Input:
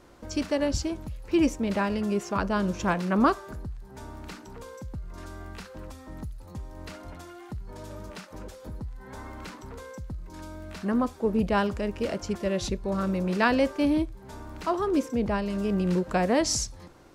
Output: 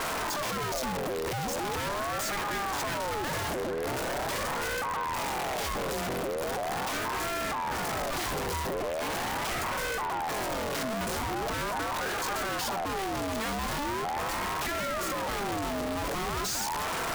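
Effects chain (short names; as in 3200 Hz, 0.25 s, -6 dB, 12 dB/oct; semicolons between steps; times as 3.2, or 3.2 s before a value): infinite clipping; delay with a stepping band-pass 0.221 s, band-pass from 720 Hz, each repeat 0.7 oct, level -5 dB; ring modulator with a swept carrier 730 Hz, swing 40%, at 0.41 Hz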